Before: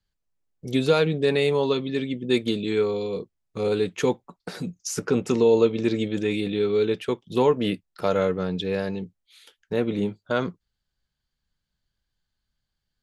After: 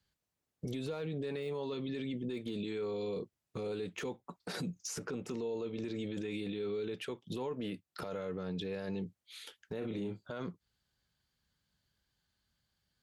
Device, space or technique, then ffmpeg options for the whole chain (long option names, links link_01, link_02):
podcast mastering chain: -filter_complex "[0:a]asettb=1/sr,asplit=3[link_01][link_02][link_03];[link_01]atrim=end=9.784[link_04];[link_02]atrim=start=9.78:end=10.32,asetpts=PTS-STARTPTS,afade=type=in:duration=0.004:curve=qsin,afade=type=out:start_time=0.536:duration=0.004:curve=qsin,asplit=2[link_05][link_06];[link_06]adelay=36,volume=-7.5dB[link_07];[link_05][link_07]amix=inputs=2:normalize=0,atrim=end_sample=23814[link_08];[link_03]atrim=start=10.316[link_09];[link_04][link_08]acrossfade=duration=0.004:curve1=hsin:curve2=qsin[link_10];[link_10][link_09]acrossfade=duration=0.004:curve1=qsin:curve2=hsin,highpass=69,deesser=0.9,acompressor=threshold=-34dB:ratio=4,alimiter=level_in=9dB:limit=-24dB:level=0:latency=1:release=29,volume=-9dB,volume=3dB" -ar 48000 -c:a libmp3lame -b:a 96k